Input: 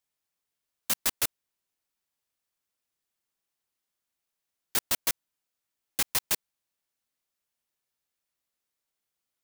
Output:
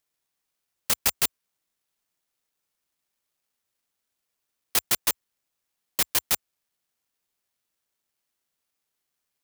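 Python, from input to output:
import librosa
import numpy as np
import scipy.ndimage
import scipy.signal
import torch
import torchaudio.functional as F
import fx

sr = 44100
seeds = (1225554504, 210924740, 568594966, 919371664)

y = scipy.signal.sosfilt(scipy.signal.butter(4, 55.0, 'highpass', fs=sr, output='sos'), x)
y = (np.kron(y[::6], np.eye(6)[0]) * 6)[:len(y)]
y = y * 10.0 ** (-4.0 / 20.0)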